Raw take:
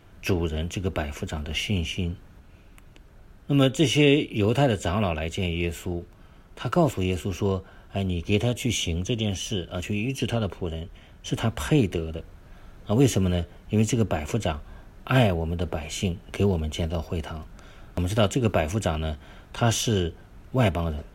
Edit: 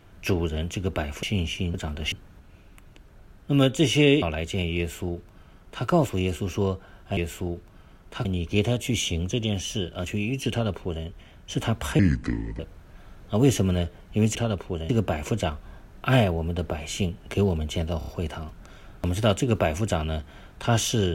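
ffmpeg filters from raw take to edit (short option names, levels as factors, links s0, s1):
-filter_complex "[0:a]asplit=14[s0][s1][s2][s3][s4][s5][s6][s7][s8][s9][s10][s11][s12][s13];[s0]atrim=end=1.232[s14];[s1]atrim=start=1.608:end=2.122[s15];[s2]atrim=start=1.228:end=1.612[s16];[s3]atrim=start=2.118:end=4.222[s17];[s4]atrim=start=5.058:end=8.012[s18];[s5]atrim=start=5.618:end=6.702[s19];[s6]atrim=start=8.008:end=11.754[s20];[s7]atrim=start=11.75:end=12.16,asetpts=PTS-STARTPTS,asetrate=29988,aresample=44100[s21];[s8]atrim=start=12.156:end=13.922[s22];[s9]atrim=start=10.268:end=10.812[s23];[s10]atrim=start=13.918:end=17.042[s24];[s11]atrim=start=17.008:end=17.042[s25];[s12]atrim=start=17.008:end=17.042[s26];[s13]atrim=start=17.008[s27];[s14][s15]acrossfade=d=0.004:c1=hsin:c2=hsin[s28];[s28][s16]acrossfade=d=0.004:c1=hsin:c2=hsin[s29];[s29][s17]acrossfade=d=0.004:c1=hsin:c2=hsin[s30];[s30][s18]acrossfade=d=0.004:c1=hsin:c2=hsin[s31];[s31][s19]acrossfade=d=0.004:c1=hsin:c2=hsin[s32];[s32][s20]acrossfade=d=0.004:c1=hsin:c2=hsin[s33];[s33][s21]acrossfade=d=0.004:c1=hsin:c2=hsin[s34];[s34][s22]acrossfade=d=0.004:c1=hsin:c2=hsin[s35];[s35][s23]acrossfade=d=0.004:c1=hsin:c2=hsin[s36];[s36][s24]acrossfade=d=0.004:c1=hsin:c2=hsin[s37];[s37][s25]acrossfade=d=0.004:c1=hsin:c2=hsin[s38];[s38][s26]acrossfade=d=0.004:c1=hsin:c2=hsin[s39];[s39][s27]acrossfade=d=0.004:c1=hsin:c2=hsin"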